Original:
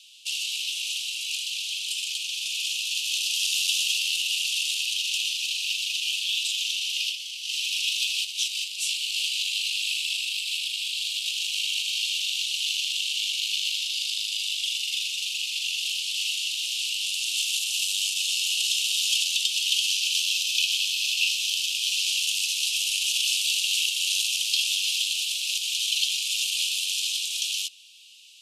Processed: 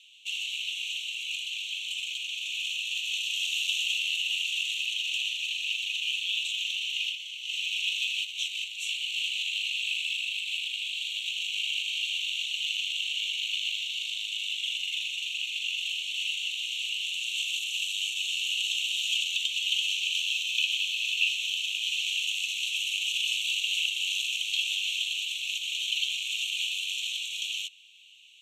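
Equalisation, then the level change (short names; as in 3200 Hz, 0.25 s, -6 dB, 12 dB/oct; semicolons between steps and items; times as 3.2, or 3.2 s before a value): running mean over 9 samples; +4.5 dB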